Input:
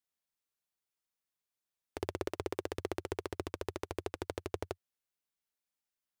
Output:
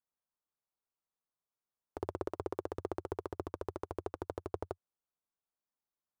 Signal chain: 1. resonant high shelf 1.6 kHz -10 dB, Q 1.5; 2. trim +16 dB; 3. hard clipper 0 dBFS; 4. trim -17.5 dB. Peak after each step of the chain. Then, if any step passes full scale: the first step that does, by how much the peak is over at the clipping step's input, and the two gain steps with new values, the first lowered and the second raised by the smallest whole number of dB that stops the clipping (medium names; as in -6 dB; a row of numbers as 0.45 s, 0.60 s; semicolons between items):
-18.0 dBFS, -2.0 dBFS, -2.0 dBFS, -19.5 dBFS; nothing clips